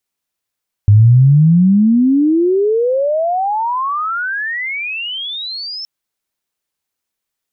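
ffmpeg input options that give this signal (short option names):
-f lavfi -i "aevalsrc='pow(10,(-3.5-19.5*t/4.97)/20)*sin(2*PI*100*4.97/log(5400/100)*(exp(log(5400/100)*t/4.97)-1))':d=4.97:s=44100"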